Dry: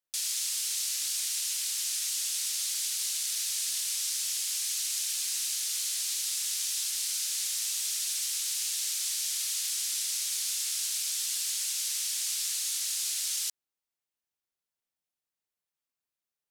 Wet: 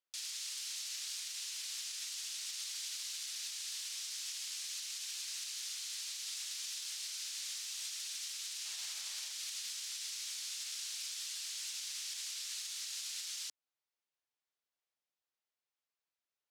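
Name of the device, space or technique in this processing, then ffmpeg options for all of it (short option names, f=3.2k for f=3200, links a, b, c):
DJ mixer with the lows and highs turned down: -filter_complex "[0:a]asettb=1/sr,asplit=3[a][b][c];[a]atrim=end=8.654[d];[b]atrim=start=8.65:end=9.32,asetpts=PTS-STARTPTS,afade=t=in:d=0.004:c=qsin,afade=t=out:st=0.666:d=0.004:c=qsin,equalizer=f=670:t=o:w=2.1:g=10[e];[c]atrim=start=9.316[f];[d][e]acrossfade=d=0.004:c1=hsin:c2=qsin[g];[g][f]acrossfade=d=0.004:c1=qsin:c2=hsin,acrossover=split=330 6500:gain=0.2 1 0.251[h][i][j];[h][i][j]amix=inputs=3:normalize=0,alimiter=level_in=7.5dB:limit=-24dB:level=0:latency=1:release=170,volume=-7.5dB,volume=-1dB"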